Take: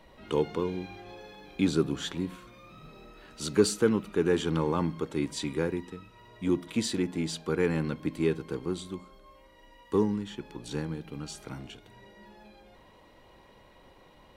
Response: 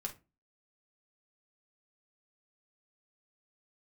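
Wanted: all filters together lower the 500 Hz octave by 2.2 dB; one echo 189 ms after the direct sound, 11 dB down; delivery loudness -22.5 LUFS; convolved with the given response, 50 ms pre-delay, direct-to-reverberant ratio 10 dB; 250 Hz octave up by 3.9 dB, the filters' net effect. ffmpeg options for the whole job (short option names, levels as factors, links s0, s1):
-filter_complex "[0:a]equalizer=f=250:t=o:g=7,equalizer=f=500:t=o:g=-6,aecho=1:1:189:0.282,asplit=2[s0][s1];[1:a]atrim=start_sample=2205,adelay=50[s2];[s1][s2]afir=irnorm=-1:irlink=0,volume=0.335[s3];[s0][s3]amix=inputs=2:normalize=0,volume=1.88"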